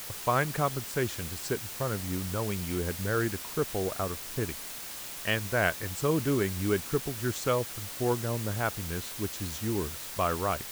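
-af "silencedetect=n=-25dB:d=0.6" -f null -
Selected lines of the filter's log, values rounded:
silence_start: 4.52
silence_end: 5.25 | silence_duration: 0.74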